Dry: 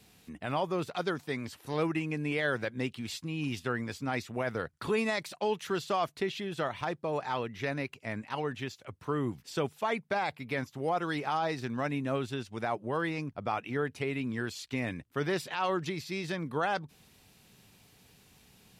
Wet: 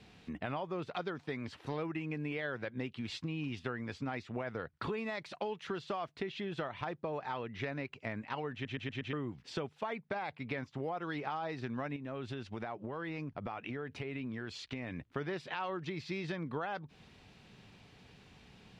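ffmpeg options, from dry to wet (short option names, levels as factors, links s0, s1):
-filter_complex "[0:a]asettb=1/sr,asplit=3[s0][s1][s2];[s0]atrim=end=11.964[s3];[s1]atrim=start=11.96:end=15.06,asetpts=PTS-STARTPTS,afade=t=in:d=0.004:c=qsin,afade=t=out:st=3.096:d=0.004:c=qsin,acompressor=threshold=0.0112:ratio=5:attack=3.2:release=140:knee=1:detection=peak[s4];[s2]atrim=start=15.056[s5];[s3][s4]acrossfade=d=0.004:c1=hsin:c2=qsin[s6];[s6][s5]acrossfade=d=0.004:c1=qsin:c2=hsin,asplit=6[s7][s8][s9][s10][s11][s12];[s7]atrim=end=8.652[s13];[s8]atrim=start=8.528:end=8.652[s14];[s9]atrim=start=8.528:end=8.652[s15];[s10]atrim=start=8.528:end=8.652[s16];[s11]atrim=start=8.528:end=8.652[s17];[s12]atrim=start=9.128[s18];[s13][s14]acrossfade=d=0.004:c1=hsin:c2=hsin[s19];[s19][s15]acrossfade=d=0.004:c1=hsin:c2=hsin[s20];[s20][s16]acrossfade=d=0.004:c1=hsin:c2=hsin[s21];[s21][s17]acrossfade=d=0.004:c1=hsin:c2=hsin[s22];[s22][s18]acrossfade=d=0.004:c1=hsin:c2=hsin,lowpass=3600,acompressor=threshold=0.0112:ratio=6,volume=1.5"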